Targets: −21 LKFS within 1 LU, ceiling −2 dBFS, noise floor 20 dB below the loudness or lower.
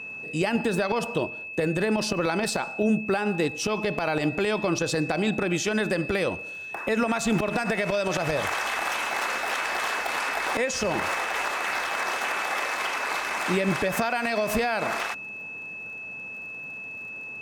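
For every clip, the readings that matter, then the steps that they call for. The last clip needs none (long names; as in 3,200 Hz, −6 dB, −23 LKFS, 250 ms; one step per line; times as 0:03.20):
crackle rate 28 per second; interfering tone 2,600 Hz; level of the tone −35 dBFS; integrated loudness −26.5 LKFS; sample peak −13.0 dBFS; target loudness −21.0 LKFS
→ click removal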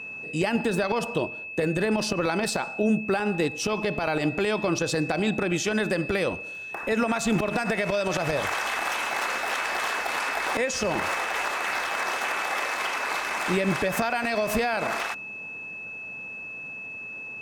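crackle rate 0.29 per second; interfering tone 2,600 Hz; level of the tone −35 dBFS
→ notch filter 2,600 Hz, Q 30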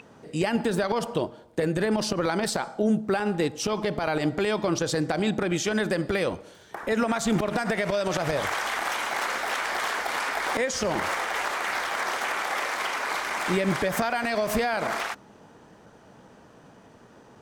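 interfering tone none found; integrated loudness −26.5 LKFS; sample peak −13.0 dBFS; target loudness −21.0 LKFS
→ level +5.5 dB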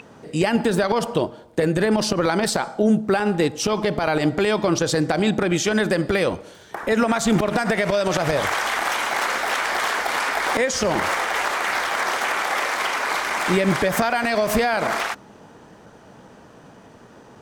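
integrated loudness −21.0 LKFS; sample peak −7.5 dBFS; background noise floor −47 dBFS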